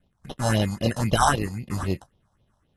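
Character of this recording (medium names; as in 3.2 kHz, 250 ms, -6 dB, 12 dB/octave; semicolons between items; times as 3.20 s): aliases and images of a low sample rate 2.3 kHz, jitter 0%; phasing stages 4, 3.8 Hz, lowest notch 350–1600 Hz; AAC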